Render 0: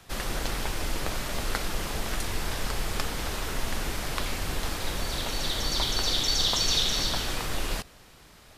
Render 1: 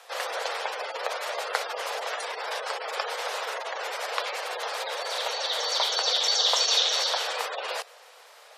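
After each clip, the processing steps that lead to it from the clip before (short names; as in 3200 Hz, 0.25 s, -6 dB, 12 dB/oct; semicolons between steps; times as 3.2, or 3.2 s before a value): spectral gate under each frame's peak -30 dB strong; Chebyshev high-pass 480 Hz, order 5; tilt -1.5 dB/oct; gain +6 dB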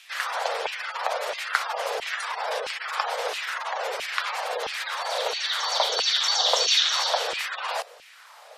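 LFO high-pass saw down 1.5 Hz 350–2700 Hz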